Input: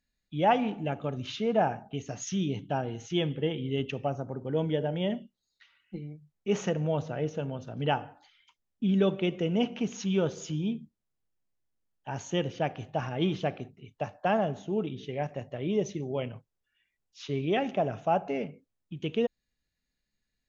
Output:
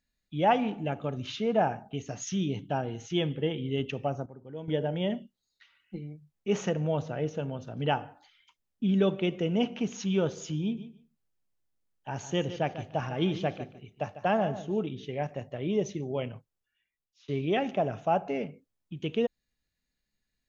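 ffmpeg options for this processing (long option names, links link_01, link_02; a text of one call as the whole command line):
ffmpeg -i in.wav -filter_complex "[0:a]asettb=1/sr,asplit=3[link_01][link_02][link_03];[link_01]atrim=end=10.624[link_04];[link_02]atrim=start=10.62:end=14.83,asetpts=PTS-STARTPTS,afade=type=in:duration=0.004:curve=qsin,afade=type=out:start_time=4.206:duration=0.004:curve=qsin,aecho=1:1:149|298:0.224|0.0358,atrim=end_sample=185661[link_05];[link_03]atrim=start=14.826[link_06];[link_04][link_05]acrossfade=duration=0.004:curve1=hsin:curve2=qsin[link_07];[link_07][link_06]acrossfade=duration=0.004:curve1=qsin:curve2=hsin,asplit=4[link_08][link_09][link_10][link_11];[link_08]atrim=end=4.262[link_12];[link_09]atrim=start=4.258:end=4.682,asetpts=PTS-STARTPTS,volume=-11.5dB[link_13];[link_10]atrim=start=4.678:end=17.28,asetpts=PTS-STARTPTS,afade=type=out:start_time=11.652:duration=0.95:silence=0.105925[link_14];[link_11]atrim=start=17.28,asetpts=PTS-STARTPTS,afade=type=in:duration=0.004:curve=hsin:silence=0.105925[link_15];[link_12][link_13]acrossfade=duration=0.004:curve1=hsin:curve2=hsin[link_16];[link_14][link_15]concat=n=2:v=0:a=1[link_17];[link_16][link_17]acrossfade=duration=0.004:curve1=hsin:curve2=hsin" out.wav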